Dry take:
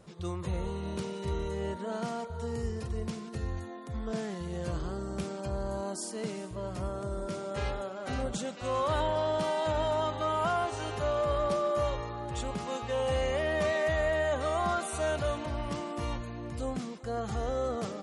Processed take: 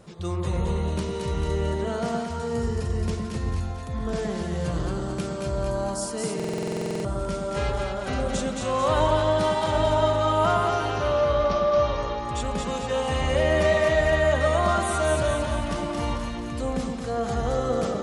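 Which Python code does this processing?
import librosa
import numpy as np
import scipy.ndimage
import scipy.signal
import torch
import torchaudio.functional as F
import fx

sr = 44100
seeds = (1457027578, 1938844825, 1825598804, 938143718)

p1 = fx.ellip_lowpass(x, sr, hz=6000.0, order=4, stop_db=40, at=(10.68, 11.96))
p2 = p1 + fx.echo_split(p1, sr, split_hz=1000.0, low_ms=115, high_ms=222, feedback_pct=52, wet_db=-3.5, dry=0)
p3 = fx.buffer_glitch(p2, sr, at_s=(6.35,), block=2048, repeats=14)
y = p3 * 10.0 ** (5.5 / 20.0)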